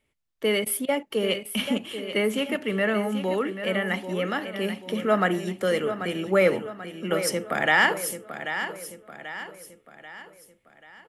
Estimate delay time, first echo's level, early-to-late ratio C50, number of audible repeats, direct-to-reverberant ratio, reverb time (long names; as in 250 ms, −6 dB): 787 ms, −10.0 dB, no reverb audible, 4, no reverb audible, no reverb audible